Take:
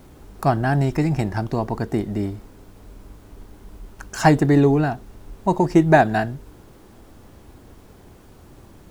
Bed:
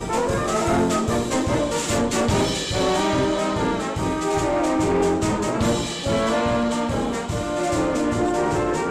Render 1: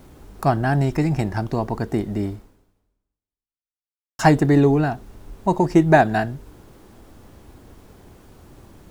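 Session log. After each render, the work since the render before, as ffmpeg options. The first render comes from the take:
ffmpeg -i in.wav -filter_complex "[0:a]asplit=2[link_01][link_02];[link_01]atrim=end=4.19,asetpts=PTS-STARTPTS,afade=type=out:start_time=2.33:duration=1.86:curve=exp[link_03];[link_02]atrim=start=4.19,asetpts=PTS-STARTPTS,afade=type=in:duration=0.004:curve=hsin[link_04];[link_03][link_04]concat=n=2:v=0:a=1" out.wav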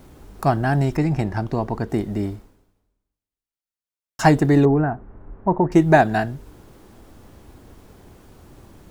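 ffmpeg -i in.wav -filter_complex "[0:a]asettb=1/sr,asplit=3[link_01][link_02][link_03];[link_01]atrim=end=0.974[link_04];[link_02]atrim=start=0.97:end=1.9,asetpts=PTS-STARTPTS,afade=type=in:duration=0.004:curve=qsin,afade=type=out:start_time=0.926:duration=0.004:curve=qsin,highshelf=frequency=5200:gain=-7[link_05];[link_03]atrim=start=1.896[link_06];[link_04][link_05]acrossfade=duration=0.004:curve1=hsin:curve2=qsin[link_07];[link_07][link_06]acrossfade=duration=0.004:curve1=qsin:curve2=hsin,asettb=1/sr,asplit=3[link_08][link_09][link_10];[link_08]atrim=end=4.654[link_11];[link_09]atrim=start=4.65:end=5.72,asetpts=PTS-STARTPTS,afade=type=in:duration=0.004:curve=qsin,afade=type=out:start_time=1.066:duration=0.004:curve=qsin,lowpass=frequency=1700:width=0.5412,lowpass=frequency=1700:width=1.3066[link_12];[link_10]atrim=start=5.716[link_13];[link_11][link_12]acrossfade=duration=0.004:curve1=hsin:curve2=qsin[link_14];[link_14][link_13]acrossfade=duration=0.004:curve1=qsin:curve2=hsin" out.wav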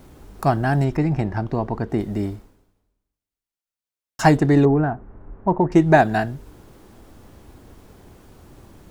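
ffmpeg -i in.wav -filter_complex "[0:a]asettb=1/sr,asplit=3[link_01][link_02][link_03];[link_01]atrim=end=0.844[link_04];[link_02]atrim=start=0.84:end=2,asetpts=PTS-STARTPTS,afade=type=in:duration=0.004:curve=qsin,afade=type=out:start_time=1.156:duration=0.004:curve=qsin,highshelf=frequency=5200:gain=-10.5[link_05];[link_03]atrim=start=1.996[link_06];[link_04][link_05]acrossfade=duration=0.004:curve1=hsin:curve2=qsin[link_07];[link_07][link_06]acrossfade=duration=0.004:curve1=qsin:curve2=hsin,asettb=1/sr,asplit=3[link_08][link_09][link_10];[link_08]atrim=end=4.374[link_11];[link_09]atrim=start=4.37:end=5.98,asetpts=PTS-STARTPTS,afade=type=in:duration=0.004:curve=qsin,afade=type=out:start_time=1.606:duration=0.004:curve=qsin,adynamicsmooth=sensitivity=8:basefreq=7800[link_12];[link_10]atrim=start=5.976[link_13];[link_11][link_12]acrossfade=duration=0.004:curve1=hsin:curve2=qsin[link_14];[link_14][link_13]acrossfade=duration=0.004:curve1=qsin:curve2=hsin" out.wav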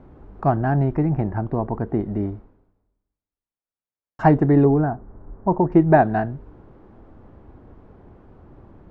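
ffmpeg -i in.wav -af "lowpass=1300" out.wav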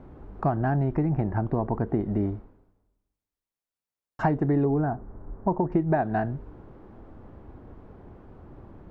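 ffmpeg -i in.wav -af "acompressor=threshold=-21dB:ratio=5" out.wav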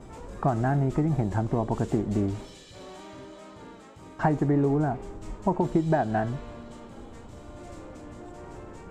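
ffmpeg -i in.wav -i bed.wav -filter_complex "[1:a]volume=-23.5dB[link_01];[0:a][link_01]amix=inputs=2:normalize=0" out.wav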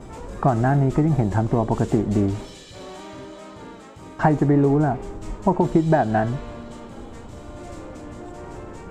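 ffmpeg -i in.wav -af "volume=6dB" out.wav

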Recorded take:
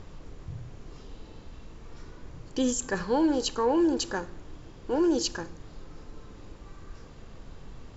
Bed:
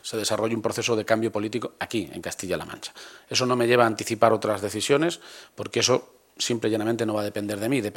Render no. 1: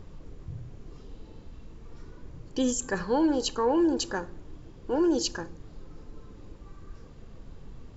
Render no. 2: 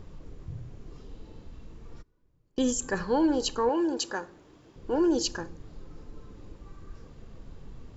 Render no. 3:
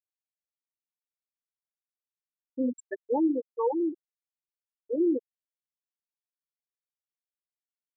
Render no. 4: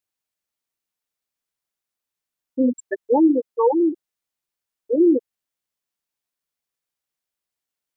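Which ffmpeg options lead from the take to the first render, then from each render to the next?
ffmpeg -i in.wav -af "afftdn=noise_reduction=6:noise_floor=-48" out.wav
ffmpeg -i in.wav -filter_complex "[0:a]asplit=3[link_01][link_02][link_03];[link_01]afade=type=out:start_time=2.01:duration=0.02[link_04];[link_02]agate=range=-25dB:threshold=-35dB:ratio=16:release=100:detection=peak,afade=type=in:start_time=2.01:duration=0.02,afade=type=out:start_time=2.66:duration=0.02[link_05];[link_03]afade=type=in:start_time=2.66:duration=0.02[link_06];[link_04][link_05][link_06]amix=inputs=3:normalize=0,asettb=1/sr,asplit=3[link_07][link_08][link_09];[link_07]atrim=end=3.694[link_10];[link_08]atrim=start=3.69:end=4.76,asetpts=PTS-STARTPTS,afade=type=in:duration=0.004:curve=qsin,afade=type=out:start_time=1.066:duration=0.004:curve=qsin,highpass=frequency=390:poles=1[link_11];[link_09]atrim=start=4.756[link_12];[link_10][link_11]acrossfade=duration=0.004:curve1=hsin:curve2=qsin[link_13];[link_13][link_12]acrossfade=duration=0.004:curve1=qsin:curve2=hsin" out.wav
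ffmpeg -i in.wav -af "highpass=frequency=110:poles=1,afftfilt=real='re*gte(hypot(re,im),0.282)':imag='im*gte(hypot(re,im),0.282)':win_size=1024:overlap=0.75" out.wav
ffmpeg -i in.wav -af "volume=9.5dB" out.wav

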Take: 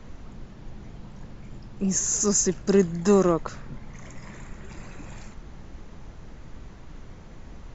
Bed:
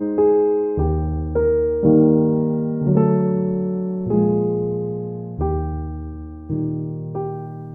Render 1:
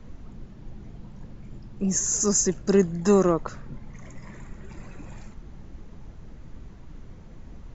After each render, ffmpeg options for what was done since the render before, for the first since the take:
ffmpeg -i in.wav -af "afftdn=noise_reduction=6:noise_floor=-45" out.wav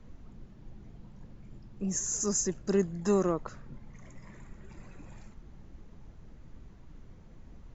ffmpeg -i in.wav -af "volume=-7.5dB" out.wav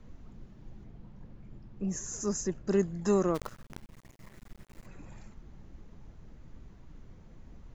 ffmpeg -i in.wav -filter_complex "[0:a]asettb=1/sr,asplit=3[link_01][link_02][link_03];[link_01]atrim=end=0.844[link_04];[link_02]atrim=start=0.84:end=2.71,asetpts=PTS-STARTPTS,afade=type=in:duration=0.004:curve=qsin,afade=type=out:start_time=1.866:duration=0.004:curve=qsin,aemphasis=mode=reproduction:type=50kf[link_05];[link_03]atrim=start=2.706[link_06];[link_04][link_05]acrossfade=duration=0.004:curve1=hsin:curve2=qsin[link_07];[link_07][link_06]acrossfade=duration=0.004:curve1=qsin:curve2=hsin,asplit=3[link_08][link_09][link_10];[link_08]afade=type=out:start_time=3.34:duration=0.02[link_11];[link_09]acrusher=bits=7:dc=4:mix=0:aa=0.000001,afade=type=in:start_time=3.34:duration=0.02,afade=type=out:start_time=4.85:duration=0.02[link_12];[link_10]afade=type=in:start_time=4.85:duration=0.02[link_13];[link_11][link_12][link_13]amix=inputs=3:normalize=0" out.wav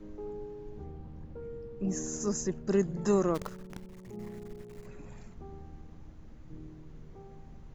ffmpeg -i in.wav -i bed.wav -filter_complex "[1:a]volume=-26dB[link_01];[0:a][link_01]amix=inputs=2:normalize=0" out.wav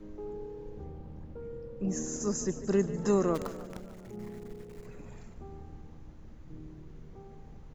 ffmpeg -i in.wav -filter_complex "[0:a]asplit=7[link_01][link_02][link_03][link_04][link_05][link_06][link_07];[link_02]adelay=147,afreqshift=35,volume=-14dB[link_08];[link_03]adelay=294,afreqshift=70,volume=-18.7dB[link_09];[link_04]adelay=441,afreqshift=105,volume=-23.5dB[link_10];[link_05]adelay=588,afreqshift=140,volume=-28.2dB[link_11];[link_06]adelay=735,afreqshift=175,volume=-32.9dB[link_12];[link_07]adelay=882,afreqshift=210,volume=-37.7dB[link_13];[link_01][link_08][link_09][link_10][link_11][link_12][link_13]amix=inputs=7:normalize=0" out.wav

